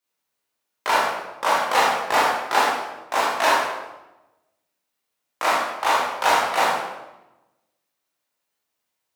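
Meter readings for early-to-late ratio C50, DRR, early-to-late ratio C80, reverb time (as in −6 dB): 0.0 dB, −7.0 dB, 3.5 dB, 1.0 s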